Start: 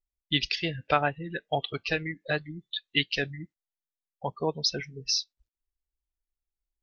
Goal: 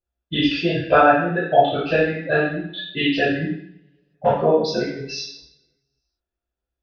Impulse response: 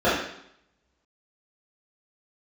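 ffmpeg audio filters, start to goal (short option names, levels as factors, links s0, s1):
-filter_complex "[0:a]highshelf=f=2500:g=-3,asettb=1/sr,asplit=3[s0][s1][s2];[s0]atrim=end=3.284[s3];[s1]atrim=start=3.28:end=4.37,asetpts=PTS-STARTPTS,afade=t=in:d=0.004:c=qsin,afade=t=out:st=1.086:d=0.004:c=qsin,aeval=exprs='0.141*(cos(1*acos(clip(val(0)/0.141,-1,1)))-cos(1*PI/2))+0.0282*(cos(5*acos(clip(val(0)/0.141,-1,1)))-cos(5*PI/2))':c=same[s4];[s2]atrim=start=4.366[s5];[s3][s4]acrossfade=d=0.004:c1=hsin:c2=qsin[s6];[s6][s5]acrossfade=d=0.004:c1=qsin:c2=hsin[s7];[1:a]atrim=start_sample=2205[s8];[s7][s8]afir=irnorm=-1:irlink=0,volume=0.335"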